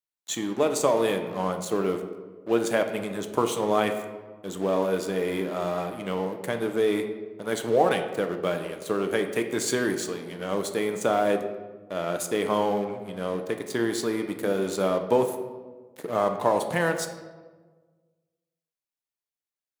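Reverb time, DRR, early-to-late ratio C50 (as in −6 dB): 1.4 s, 5.5 dB, 8.5 dB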